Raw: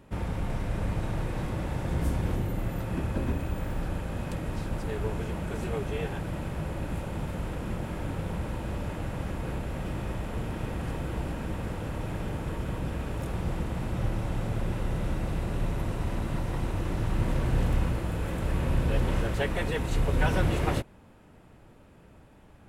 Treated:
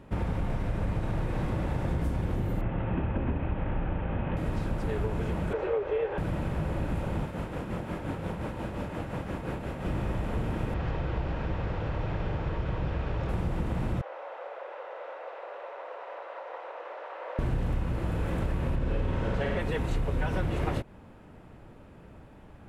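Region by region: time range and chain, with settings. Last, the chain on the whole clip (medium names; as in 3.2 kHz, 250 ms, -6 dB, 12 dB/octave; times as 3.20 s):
2.61–4.37 s: CVSD coder 32 kbps + steep low-pass 3.1 kHz 48 dB/octave + peaking EQ 850 Hz +3.5 dB 0.26 oct
5.53–6.18 s: low-pass 2.8 kHz + resonant low shelf 310 Hz -12.5 dB, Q 3 + band-stop 700 Hz, Q 15
7.23–9.86 s: bass shelf 85 Hz -11 dB + tremolo 5.7 Hz, depth 50%
10.74–13.29 s: low-pass 5.5 kHz 24 dB/octave + peaking EQ 240 Hz -7.5 dB 0.8 oct
14.01–17.39 s: elliptic high-pass 510 Hz, stop band 60 dB + tape spacing loss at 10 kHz 31 dB
18.76–19.60 s: distance through air 52 m + flutter echo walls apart 9 m, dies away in 1.1 s
whole clip: compression, threshold -29 dBFS; treble shelf 4.1 kHz -9.5 dB; trim +4 dB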